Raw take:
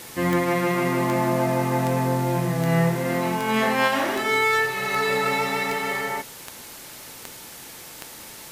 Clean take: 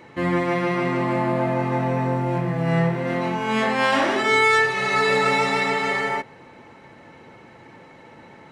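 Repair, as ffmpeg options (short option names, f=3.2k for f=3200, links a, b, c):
-af "adeclick=t=4,afwtdn=0.01,asetnsamples=n=441:p=0,asendcmd='3.88 volume volume 3.5dB',volume=0dB"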